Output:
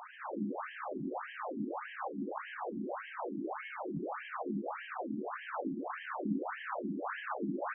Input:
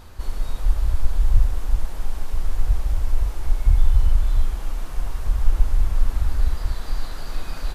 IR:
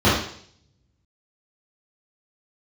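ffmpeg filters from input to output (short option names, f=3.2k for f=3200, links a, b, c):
-filter_complex "[0:a]acrossover=split=3000[a][b];[b]acompressor=threshold=-55dB:ratio=4:attack=1:release=60[c];[a][c]amix=inputs=2:normalize=0,asplit=2[d][e];[1:a]atrim=start_sample=2205,afade=t=out:st=0.21:d=0.01,atrim=end_sample=9702[f];[e][f]afir=irnorm=-1:irlink=0,volume=-24dB[g];[d][g]amix=inputs=2:normalize=0,afftfilt=real='re*between(b*sr/1024,240*pow(2300/240,0.5+0.5*sin(2*PI*1.7*pts/sr))/1.41,240*pow(2300/240,0.5+0.5*sin(2*PI*1.7*pts/sr))*1.41)':imag='im*between(b*sr/1024,240*pow(2300/240,0.5+0.5*sin(2*PI*1.7*pts/sr))/1.41,240*pow(2300/240,0.5+0.5*sin(2*PI*1.7*pts/sr))*1.41)':win_size=1024:overlap=0.75,volume=6dB"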